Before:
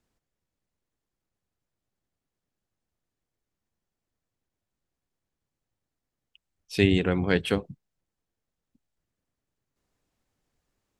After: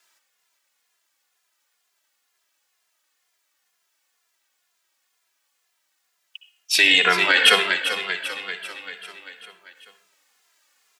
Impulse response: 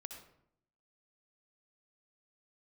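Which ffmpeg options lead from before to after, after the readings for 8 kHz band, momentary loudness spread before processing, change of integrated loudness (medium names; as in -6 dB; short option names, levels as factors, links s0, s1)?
+19.5 dB, 8 LU, +7.5 dB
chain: -filter_complex "[0:a]highpass=1300,aecho=1:1:392|784|1176|1568|1960|2352:0.282|0.161|0.0916|0.0522|0.0298|0.017,asplit=2[s0][s1];[1:a]atrim=start_sample=2205[s2];[s1][s2]afir=irnorm=-1:irlink=0,volume=1.88[s3];[s0][s3]amix=inputs=2:normalize=0,alimiter=level_in=5.01:limit=0.891:release=50:level=0:latency=1,asplit=2[s4][s5];[s5]adelay=2.5,afreqshift=-2.1[s6];[s4][s6]amix=inputs=2:normalize=1,volume=1.33"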